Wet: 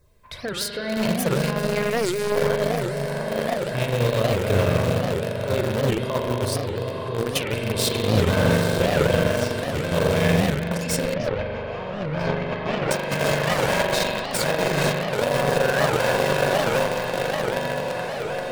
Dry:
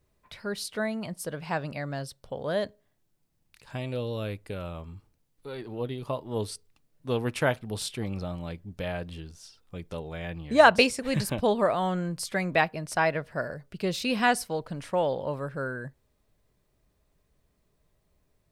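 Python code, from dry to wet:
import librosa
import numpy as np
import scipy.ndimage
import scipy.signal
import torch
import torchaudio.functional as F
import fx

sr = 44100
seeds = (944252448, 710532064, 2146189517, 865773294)

p1 = fx.self_delay(x, sr, depth_ms=0.21)
p2 = p1 + fx.echo_diffused(p1, sr, ms=911, feedback_pct=73, wet_db=-9, dry=0)
p3 = fx.over_compress(p2, sr, threshold_db=-33.0, ratio=-1.0)
p4 = fx.filter_lfo_notch(p3, sr, shape='saw_down', hz=3.1, low_hz=230.0, high_hz=3200.0, q=2.3)
p5 = fx.robotise(p4, sr, hz=207.0, at=(1.47, 2.36))
p6 = p5 + 0.39 * np.pad(p5, (int(1.9 * sr / 1000.0), 0))[:len(p5)]
p7 = fx.rev_spring(p6, sr, rt60_s=3.2, pass_ms=(41,), chirp_ms=20, drr_db=-1.5)
p8 = np.where(np.abs(p7) >= 10.0 ** (-23.5 / 20.0), p7, 0.0)
p9 = p7 + (p8 * librosa.db_to_amplitude(-4.0))
p10 = fx.air_absorb(p9, sr, metres=260.0, at=(11.14, 12.91))
p11 = fx.record_warp(p10, sr, rpm=78.0, depth_cents=250.0)
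y = p11 * librosa.db_to_amplitude(5.0)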